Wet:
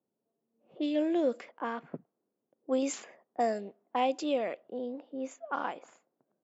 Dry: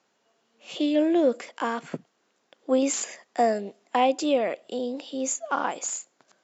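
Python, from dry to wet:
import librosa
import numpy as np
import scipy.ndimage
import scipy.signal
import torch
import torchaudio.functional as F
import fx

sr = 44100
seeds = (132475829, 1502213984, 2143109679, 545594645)

y = fx.env_lowpass(x, sr, base_hz=380.0, full_db=-18.5)
y = F.gain(torch.from_numpy(y), -7.0).numpy()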